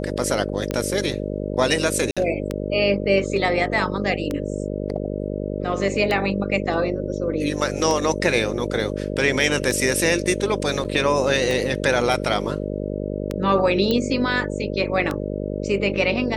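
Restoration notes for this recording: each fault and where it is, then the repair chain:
buzz 50 Hz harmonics 12 -27 dBFS
tick 33 1/3 rpm -11 dBFS
2.11–2.17 gap 56 ms
10.84–10.85 gap 7.7 ms
13.91 pop -9 dBFS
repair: de-click; de-hum 50 Hz, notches 12; interpolate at 2.11, 56 ms; interpolate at 10.84, 7.7 ms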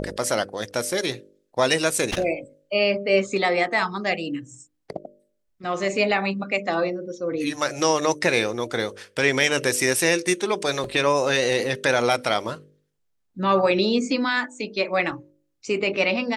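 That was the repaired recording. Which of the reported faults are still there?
none

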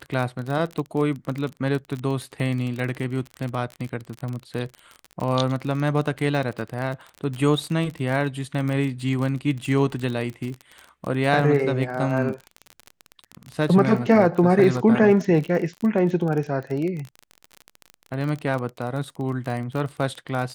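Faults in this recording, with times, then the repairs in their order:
crackle 31/s -27 dBFS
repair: de-click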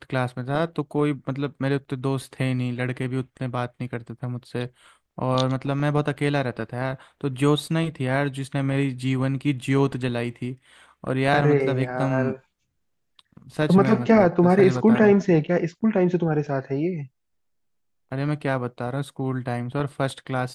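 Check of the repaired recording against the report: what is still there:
none

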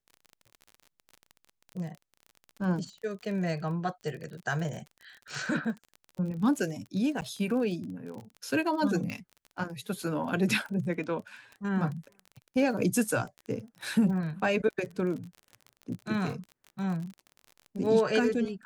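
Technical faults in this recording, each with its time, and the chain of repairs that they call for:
crackle 33/s -37 dBFS
7.21–7.22 gap 9.6 ms
9.1 pop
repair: de-click; interpolate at 7.21, 9.6 ms

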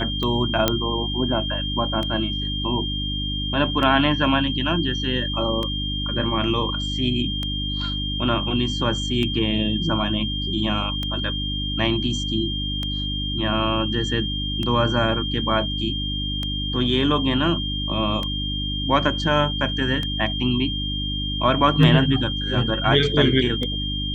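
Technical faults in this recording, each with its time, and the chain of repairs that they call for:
hum 50 Hz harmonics 6 -28 dBFS
tick 33 1/3 rpm -14 dBFS
tone 3200 Hz -27 dBFS
0.68 pop -2 dBFS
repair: de-click; de-hum 50 Hz, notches 6; notch 3200 Hz, Q 30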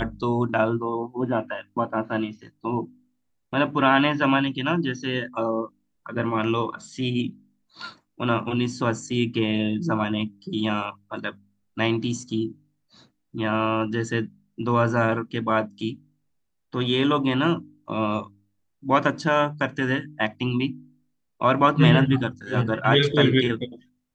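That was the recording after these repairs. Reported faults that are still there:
none

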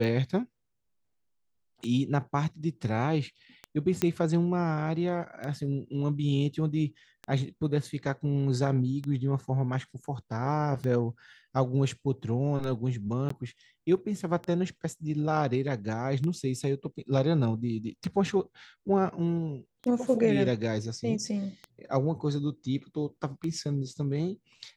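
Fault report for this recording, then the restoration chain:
tick 33 1/3 rpm -23 dBFS
4.02 pop -12 dBFS
13.29–13.3 gap 14 ms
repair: de-click; interpolate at 13.29, 14 ms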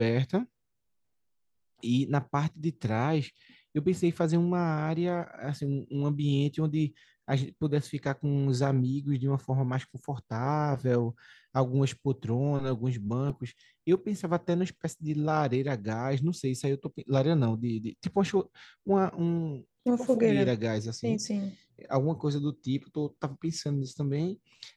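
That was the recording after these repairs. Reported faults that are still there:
none

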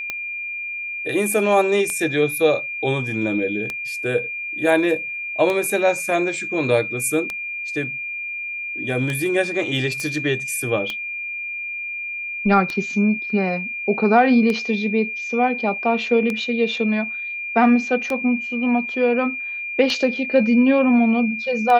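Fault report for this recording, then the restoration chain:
tick 33 1/3 rpm -11 dBFS
tone 2400 Hz -26 dBFS
10 pop -15 dBFS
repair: de-click; notch 2400 Hz, Q 30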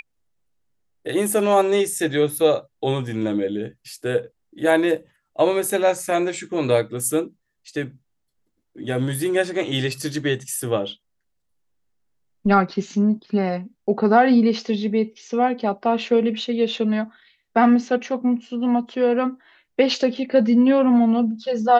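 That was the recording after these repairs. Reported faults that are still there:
none

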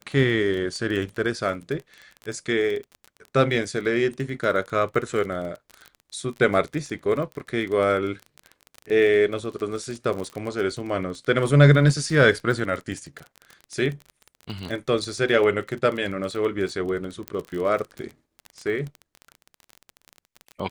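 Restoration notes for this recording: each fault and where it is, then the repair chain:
crackle 25/s -29 dBFS
17.28 pop -13 dBFS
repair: de-click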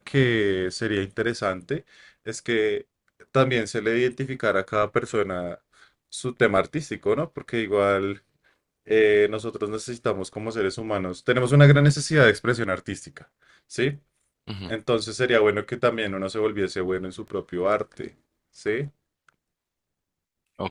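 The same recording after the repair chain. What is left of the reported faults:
17.28 pop

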